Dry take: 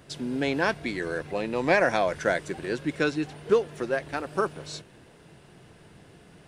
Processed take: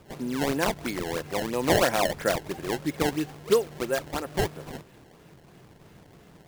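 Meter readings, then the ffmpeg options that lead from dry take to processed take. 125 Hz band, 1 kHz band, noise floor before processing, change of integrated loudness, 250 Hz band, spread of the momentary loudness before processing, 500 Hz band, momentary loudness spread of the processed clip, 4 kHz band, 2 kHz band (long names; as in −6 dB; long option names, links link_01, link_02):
+2.5 dB, 0.0 dB, −54 dBFS, 0.0 dB, +0.5 dB, 10 LU, −0.5 dB, 9 LU, +4.5 dB, −3.5 dB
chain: -af "bandreject=frequency=1500:width=23,acrusher=samples=21:mix=1:aa=0.000001:lfo=1:lforange=33.6:lforate=3"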